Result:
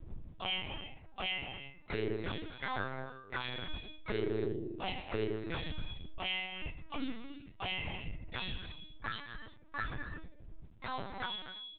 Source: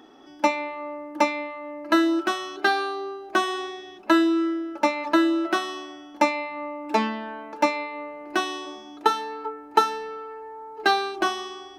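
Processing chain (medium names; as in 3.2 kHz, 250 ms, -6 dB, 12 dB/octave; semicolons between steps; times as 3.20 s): expander on every frequency bin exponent 3; wind noise 83 Hz -47 dBFS; treble shelf 2.5 kHz +10 dB; reverse; compression 6:1, threshold -40 dBFS, peak gain reduction 25.5 dB; reverse; peak limiter -35 dBFS, peak gain reduction 8.5 dB; harmony voices -4 st -17 dB, +4 st -1 dB, +5 st 0 dB; crackle 200 per s -61 dBFS; gated-style reverb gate 380 ms flat, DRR 7 dB; LPC vocoder at 8 kHz pitch kept; trim +2 dB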